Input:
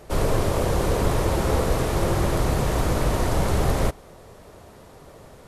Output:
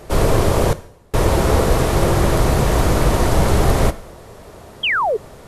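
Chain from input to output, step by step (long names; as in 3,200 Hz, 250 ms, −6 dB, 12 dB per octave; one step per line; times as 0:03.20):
0:00.72–0:01.14: gate with flip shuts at −16 dBFS, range −38 dB
coupled-rooms reverb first 0.66 s, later 2.2 s, from −24 dB, DRR 14 dB
0:04.83–0:05.17: sound drawn into the spectrogram fall 390–3,400 Hz −24 dBFS
level +6.5 dB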